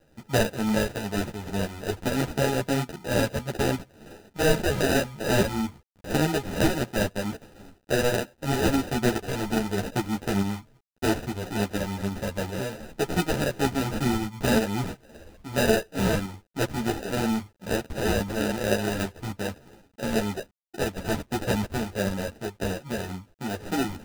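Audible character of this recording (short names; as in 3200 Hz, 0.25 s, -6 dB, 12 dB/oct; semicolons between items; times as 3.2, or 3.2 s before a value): aliases and images of a low sample rate 1100 Hz, jitter 0%; tremolo saw up 2.4 Hz, depth 45%; a quantiser's noise floor 10-bit, dither none; a shimmering, thickened sound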